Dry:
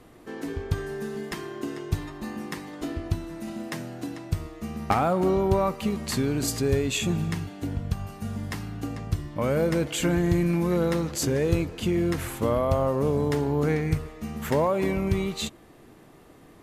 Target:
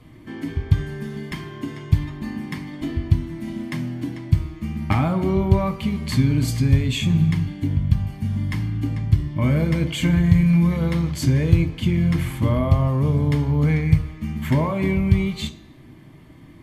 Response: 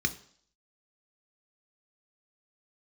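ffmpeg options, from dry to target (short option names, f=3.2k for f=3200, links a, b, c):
-filter_complex "[0:a]asplit=2[a][b];[b]adynamicequalizer=threshold=0.0126:dfrequency=500:dqfactor=0.89:tfrequency=500:tqfactor=0.89:attack=5:release=100:ratio=0.375:range=4:mode=cutabove:tftype=bell[c];[1:a]atrim=start_sample=2205,asetrate=40131,aresample=44100,highshelf=f=6.5k:g=-11[d];[c][d]afir=irnorm=-1:irlink=0,volume=-3dB[e];[a][e]amix=inputs=2:normalize=0,volume=-2dB"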